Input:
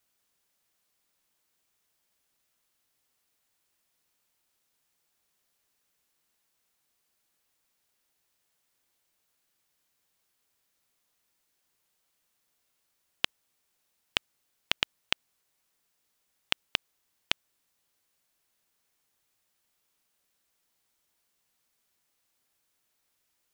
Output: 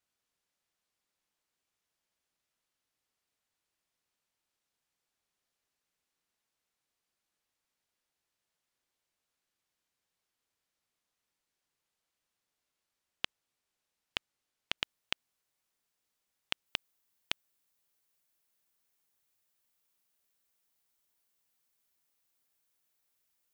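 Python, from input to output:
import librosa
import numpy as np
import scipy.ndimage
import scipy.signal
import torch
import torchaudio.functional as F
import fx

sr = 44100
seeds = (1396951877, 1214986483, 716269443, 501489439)

y = fx.high_shelf(x, sr, hz=11000.0, db=fx.steps((0.0, -12.0), (14.77, -2.5), (16.65, 7.5)))
y = F.gain(torch.from_numpy(y), -6.5).numpy()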